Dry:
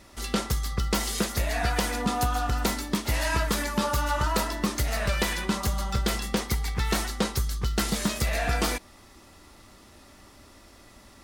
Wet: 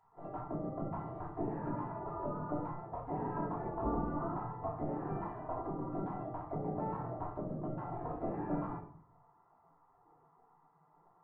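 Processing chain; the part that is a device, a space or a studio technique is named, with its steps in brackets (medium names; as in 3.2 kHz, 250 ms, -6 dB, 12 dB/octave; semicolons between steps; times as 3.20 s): under water (low-pass 670 Hz 24 dB/octave; peaking EQ 580 Hz +11 dB 0.46 oct); spectral gate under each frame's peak -20 dB weak; simulated room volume 610 m³, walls furnished, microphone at 3 m; trim +2 dB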